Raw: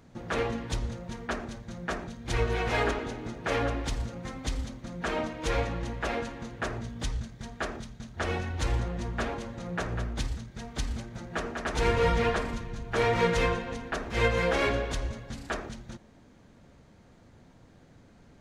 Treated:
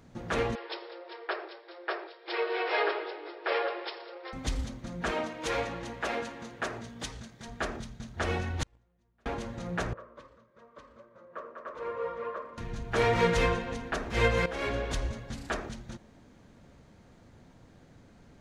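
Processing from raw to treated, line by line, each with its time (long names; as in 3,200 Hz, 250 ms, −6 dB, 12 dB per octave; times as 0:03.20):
0:00.55–0:04.33: linear-phase brick-wall band-pass 320–5,500 Hz
0:05.11–0:07.48: high-pass filter 300 Hz 6 dB per octave
0:08.63–0:09.26: noise gate −21 dBFS, range −39 dB
0:09.93–0:12.58: pair of resonant band-passes 780 Hz, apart 0.96 octaves
0:14.46–0:14.95: fade in, from −14 dB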